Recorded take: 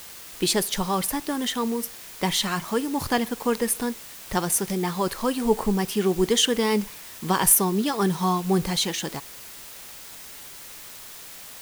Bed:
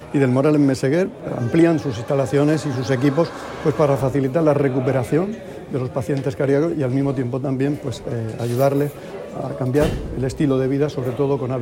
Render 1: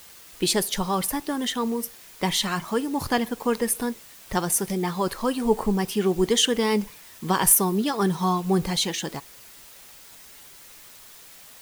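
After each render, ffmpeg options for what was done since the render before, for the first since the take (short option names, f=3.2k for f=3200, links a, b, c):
-af "afftdn=nr=6:nf=-42"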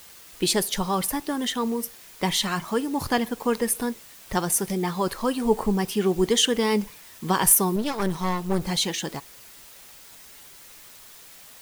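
-filter_complex "[0:a]asettb=1/sr,asplit=3[a][b][c];[a]atrim=end=7.764[d];[b]atrim=start=7.76:end=8.67,asetpts=PTS-STARTPTS,afade=t=in:d=0.004:c=qsin,afade=t=out:st=0.906:d=0.004:c=qsin,aeval=exprs='clip(val(0),-1,0.0188)':c=same[e];[c]atrim=start=8.666[f];[d][e]acrossfade=d=0.004:c1=hsin:c2=qsin[g];[g][f]acrossfade=d=0.004:c1=qsin:c2=hsin"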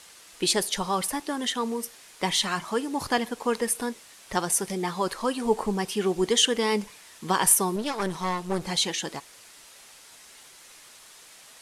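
-af "lowpass=f=11k:w=0.5412,lowpass=f=11k:w=1.3066,lowshelf=f=210:g=-10"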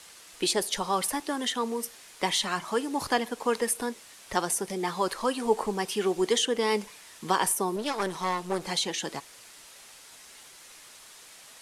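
-filter_complex "[0:a]acrossover=split=250|990[a][b][c];[a]acompressor=threshold=-42dB:ratio=6[d];[c]alimiter=limit=-16dB:level=0:latency=1:release=332[e];[d][b][e]amix=inputs=3:normalize=0"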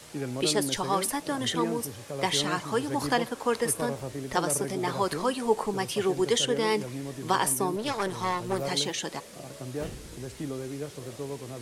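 -filter_complex "[1:a]volume=-17dB[a];[0:a][a]amix=inputs=2:normalize=0"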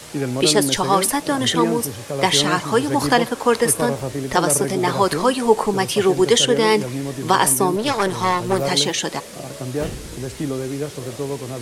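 -af "volume=10dB,alimiter=limit=-2dB:level=0:latency=1"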